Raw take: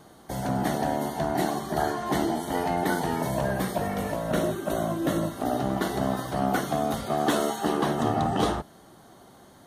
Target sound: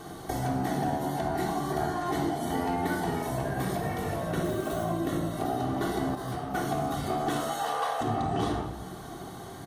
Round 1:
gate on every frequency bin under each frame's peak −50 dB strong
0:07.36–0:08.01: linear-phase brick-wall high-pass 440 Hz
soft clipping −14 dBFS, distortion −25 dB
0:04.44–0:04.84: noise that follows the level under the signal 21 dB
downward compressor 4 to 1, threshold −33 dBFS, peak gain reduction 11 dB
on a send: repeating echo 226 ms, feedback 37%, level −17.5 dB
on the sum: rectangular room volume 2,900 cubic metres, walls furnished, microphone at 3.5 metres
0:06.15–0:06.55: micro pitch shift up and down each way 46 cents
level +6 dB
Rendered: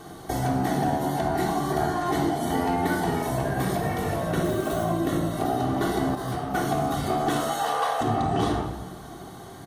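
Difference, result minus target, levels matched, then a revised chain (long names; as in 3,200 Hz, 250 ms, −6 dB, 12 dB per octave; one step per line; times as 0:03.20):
downward compressor: peak gain reduction −4.5 dB
gate on every frequency bin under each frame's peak −50 dB strong
0:07.36–0:08.01: linear-phase brick-wall high-pass 440 Hz
soft clipping −14 dBFS, distortion −25 dB
0:04.44–0:04.84: noise that follows the level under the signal 21 dB
downward compressor 4 to 1, threshold −39 dBFS, peak gain reduction 15.5 dB
on a send: repeating echo 226 ms, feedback 37%, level −17.5 dB
on the sum: rectangular room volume 2,900 cubic metres, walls furnished, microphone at 3.5 metres
0:06.15–0:06.55: micro pitch shift up and down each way 46 cents
level +6 dB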